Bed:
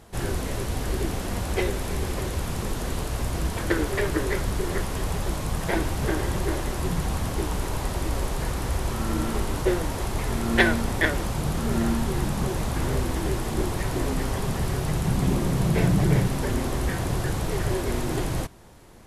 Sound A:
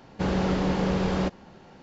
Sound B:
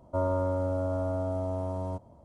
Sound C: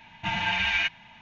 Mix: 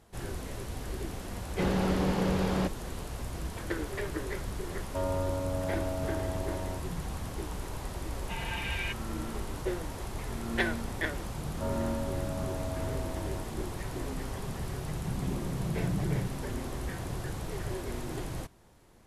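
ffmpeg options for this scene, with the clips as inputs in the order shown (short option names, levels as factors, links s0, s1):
-filter_complex "[2:a]asplit=2[s0][s1];[0:a]volume=0.316[s2];[s1]aemphasis=mode=production:type=50kf[s3];[1:a]atrim=end=1.82,asetpts=PTS-STARTPTS,volume=0.668,afade=t=in:d=0.004:c=hsin,afade=t=out:st=1.816:d=0.004:c=hsin,adelay=1390[s4];[s0]atrim=end=2.24,asetpts=PTS-STARTPTS,volume=0.631,afade=t=in:d=0.004:c=hsin,afade=t=out:st=2.236:d=0.004:c=hsin,adelay=212121S[s5];[3:a]atrim=end=1.21,asetpts=PTS-STARTPTS,volume=0.282,afade=t=in:d=0.004:c=hsin,afade=t=out:st=1.206:d=0.004:c=hsin,adelay=8050[s6];[s3]atrim=end=2.24,asetpts=PTS-STARTPTS,volume=0.422,afade=t=in:d=0.004:c=hsin,afade=t=out:st=2.236:d=0.004:c=hsin,adelay=11470[s7];[s2][s4][s5][s6][s7]amix=inputs=5:normalize=0"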